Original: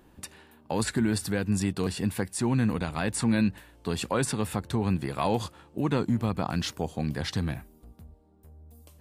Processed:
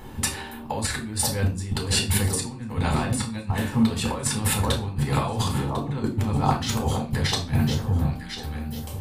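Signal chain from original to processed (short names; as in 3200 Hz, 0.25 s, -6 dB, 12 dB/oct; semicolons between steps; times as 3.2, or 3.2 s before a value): limiter -20.5 dBFS, peak gain reduction 6.5 dB; echo with dull and thin repeats by turns 0.524 s, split 1200 Hz, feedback 52%, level -11 dB; negative-ratio compressor -36 dBFS, ratio -0.5; reverb RT60 0.35 s, pre-delay 5 ms, DRR 0.5 dB; gain +5.5 dB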